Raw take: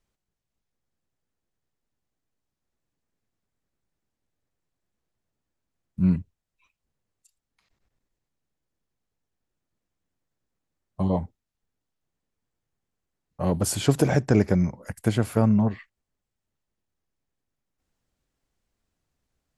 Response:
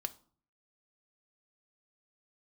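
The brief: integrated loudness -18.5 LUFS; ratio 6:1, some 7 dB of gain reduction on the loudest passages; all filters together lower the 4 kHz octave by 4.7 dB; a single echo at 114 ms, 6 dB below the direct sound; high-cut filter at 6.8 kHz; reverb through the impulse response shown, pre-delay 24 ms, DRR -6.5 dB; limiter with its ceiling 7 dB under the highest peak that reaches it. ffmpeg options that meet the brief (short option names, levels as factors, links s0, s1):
-filter_complex "[0:a]lowpass=6800,equalizer=f=4000:t=o:g=-6,acompressor=threshold=0.0891:ratio=6,alimiter=limit=0.141:level=0:latency=1,aecho=1:1:114:0.501,asplit=2[s0][s1];[1:a]atrim=start_sample=2205,adelay=24[s2];[s1][s2]afir=irnorm=-1:irlink=0,volume=2.24[s3];[s0][s3]amix=inputs=2:normalize=0,volume=1.68"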